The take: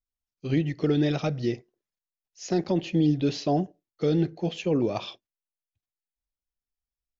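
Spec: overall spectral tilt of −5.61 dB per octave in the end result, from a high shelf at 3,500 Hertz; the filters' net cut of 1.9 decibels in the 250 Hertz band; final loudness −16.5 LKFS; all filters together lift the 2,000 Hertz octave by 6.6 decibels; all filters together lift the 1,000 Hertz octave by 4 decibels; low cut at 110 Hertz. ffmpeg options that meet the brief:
ffmpeg -i in.wav -af "highpass=110,equalizer=frequency=250:width_type=o:gain=-3,equalizer=frequency=1000:width_type=o:gain=5.5,equalizer=frequency=2000:width_type=o:gain=8,highshelf=frequency=3500:gain=-3,volume=11dB" out.wav

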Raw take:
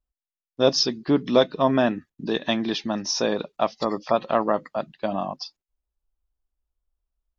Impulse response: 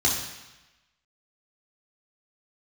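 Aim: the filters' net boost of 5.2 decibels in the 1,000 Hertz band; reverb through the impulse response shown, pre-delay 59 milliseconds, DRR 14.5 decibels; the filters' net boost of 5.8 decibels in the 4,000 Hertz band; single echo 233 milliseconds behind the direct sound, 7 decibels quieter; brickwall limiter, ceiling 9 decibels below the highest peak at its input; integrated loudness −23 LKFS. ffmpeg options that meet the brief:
-filter_complex "[0:a]equalizer=frequency=1000:width_type=o:gain=6.5,equalizer=frequency=4000:width_type=o:gain=7.5,alimiter=limit=-9.5dB:level=0:latency=1,aecho=1:1:233:0.447,asplit=2[link_01][link_02];[1:a]atrim=start_sample=2205,adelay=59[link_03];[link_02][link_03]afir=irnorm=-1:irlink=0,volume=-27dB[link_04];[link_01][link_04]amix=inputs=2:normalize=0"

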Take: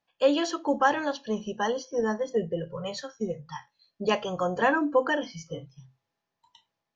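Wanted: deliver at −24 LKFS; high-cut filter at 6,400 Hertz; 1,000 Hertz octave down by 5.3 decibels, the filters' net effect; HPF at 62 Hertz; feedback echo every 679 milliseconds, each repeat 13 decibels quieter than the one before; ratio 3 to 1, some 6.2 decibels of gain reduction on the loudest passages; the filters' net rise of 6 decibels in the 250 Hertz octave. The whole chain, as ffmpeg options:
ffmpeg -i in.wav -af "highpass=62,lowpass=6400,equalizer=frequency=250:width_type=o:gain=8,equalizer=frequency=1000:width_type=o:gain=-7.5,acompressor=threshold=-25dB:ratio=3,aecho=1:1:679|1358|2037:0.224|0.0493|0.0108,volume=6.5dB" out.wav

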